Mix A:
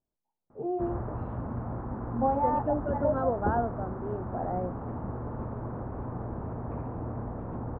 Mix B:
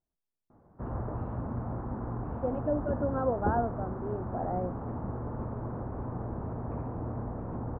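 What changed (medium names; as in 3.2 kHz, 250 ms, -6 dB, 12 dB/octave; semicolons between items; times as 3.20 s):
first voice: muted; master: add distance through air 230 m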